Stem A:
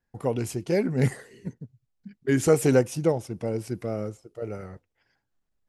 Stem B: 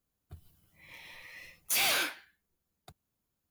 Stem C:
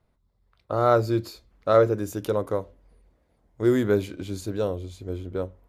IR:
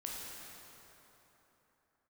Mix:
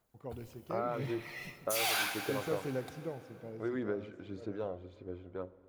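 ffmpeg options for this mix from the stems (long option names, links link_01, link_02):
-filter_complex "[0:a]lowpass=4600,volume=-19dB,asplit=2[link_01][link_02];[link_02]volume=-10.5dB[link_03];[1:a]lowshelf=frequency=620:width_type=q:width=3:gain=-6,volume=1.5dB,asplit=2[link_04][link_05];[link_05]volume=-10dB[link_06];[2:a]highpass=frequency=340:poles=1,alimiter=limit=-14.5dB:level=0:latency=1:release=471,lowpass=2100,volume=-8dB,asplit=3[link_07][link_08][link_09];[link_08]volume=-18dB[link_10];[link_09]apad=whole_len=154689[link_11];[link_04][link_11]sidechaincompress=threshold=-34dB:ratio=8:attack=16:release=711[link_12];[link_12][link_07]amix=inputs=2:normalize=0,aphaser=in_gain=1:out_gain=1:delay=1.5:decay=0.38:speed=1.8:type=sinusoidal,acompressor=threshold=-33dB:ratio=4,volume=0dB[link_13];[3:a]atrim=start_sample=2205[link_14];[link_03][link_06][link_10]amix=inputs=3:normalize=0[link_15];[link_15][link_14]afir=irnorm=-1:irlink=0[link_16];[link_01][link_13][link_16]amix=inputs=3:normalize=0"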